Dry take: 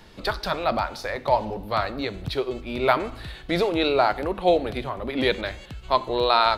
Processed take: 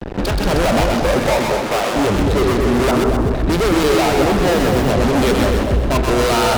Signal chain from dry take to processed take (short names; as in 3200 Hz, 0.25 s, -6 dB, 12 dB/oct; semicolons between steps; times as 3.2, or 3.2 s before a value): Wiener smoothing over 41 samples; compressor 3:1, threshold -23 dBFS, peak gain reduction 7 dB; fuzz box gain 46 dB, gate -49 dBFS; 2.91–3.31 LPF 1500 Hz 24 dB/oct; limiter -17 dBFS, peak gain reduction 7 dB; 1.32–1.96 HPF 440 Hz 12 dB/oct; split-band echo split 800 Hz, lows 0.228 s, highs 0.128 s, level -3 dB; 4.49–4.92 modulation noise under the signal 24 dB; gain +2.5 dB